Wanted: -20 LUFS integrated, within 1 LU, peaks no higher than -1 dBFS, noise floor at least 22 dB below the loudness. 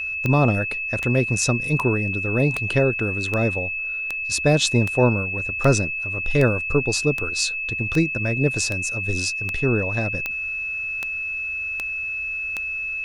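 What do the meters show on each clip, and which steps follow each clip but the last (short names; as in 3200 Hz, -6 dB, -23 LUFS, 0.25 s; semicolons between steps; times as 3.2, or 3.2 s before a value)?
clicks 17; steady tone 2600 Hz; tone level -25 dBFS; loudness -21.5 LUFS; peak -5.5 dBFS; loudness target -20.0 LUFS
-> de-click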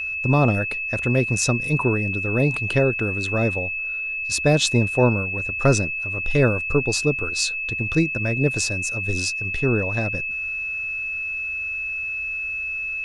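clicks 0; steady tone 2600 Hz; tone level -25 dBFS
-> notch 2600 Hz, Q 30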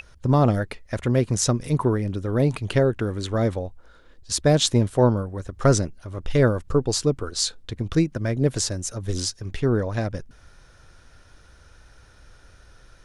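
steady tone none; loudness -23.5 LUFS; peak -5.5 dBFS; loudness target -20.0 LUFS
-> gain +3.5 dB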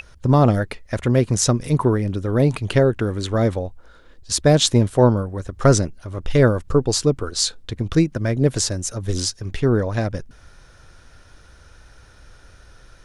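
loudness -19.5 LUFS; peak -2.0 dBFS; noise floor -48 dBFS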